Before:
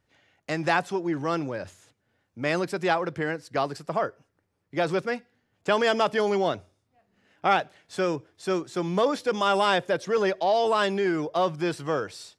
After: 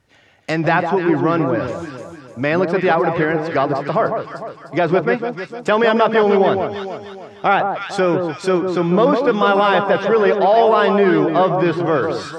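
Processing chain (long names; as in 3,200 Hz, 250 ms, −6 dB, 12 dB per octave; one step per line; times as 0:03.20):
tape wow and flutter 17 cents
in parallel at +2 dB: brickwall limiter −19.5 dBFS, peak gain reduction 11.5 dB
on the sum: delay that swaps between a low-pass and a high-pass 151 ms, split 1,200 Hz, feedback 65%, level −5 dB
treble cut that deepens with the level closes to 2,700 Hz, closed at −18 dBFS
level +4 dB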